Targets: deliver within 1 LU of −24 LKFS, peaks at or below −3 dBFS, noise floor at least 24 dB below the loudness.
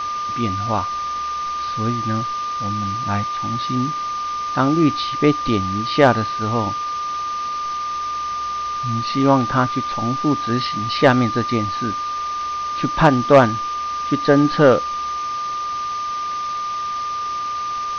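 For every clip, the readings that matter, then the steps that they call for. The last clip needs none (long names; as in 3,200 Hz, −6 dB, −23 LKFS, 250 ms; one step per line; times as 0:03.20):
interfering tone 1,200 Hz; level of the tone −22 dBFS; background noise floor −25 dBFS; target noise floor −44 dBFS; integrated loudness −20.0 LKFS; sample peak −2.0 dBFS; target loudness −24.0 LKFS
→ notch filter 1,200 Hz, Q 30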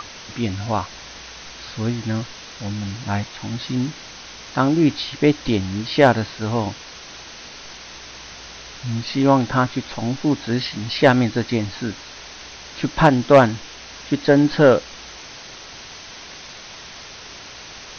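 interfering tone none found; background noise floor −39 dBFS; target noise floor −44 dBFS
→ broadband denoise 6 dB, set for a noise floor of −39 dBFS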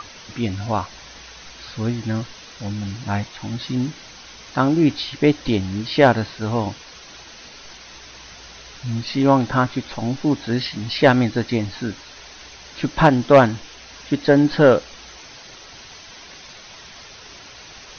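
background noise floor −42 dBFS; target noise floor −44 dBFS
→ broadband denoise 6 dB, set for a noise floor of −42 dBFS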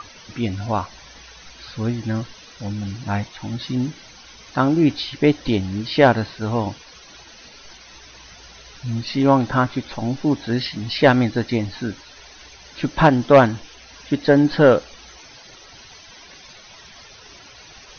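background noise floor −45 dBFS; integrated loudness −20.0 LKFS; sample peak −2.5 dBFS; target loudness −24.0 LKFS
→ level −4 dB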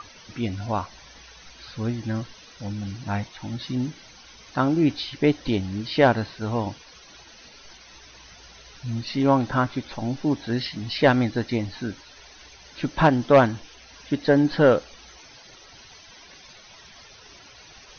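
integrated loudness −24.0 LKFS; sample peak −6.5 dBFS; background noise floor −49 dBFS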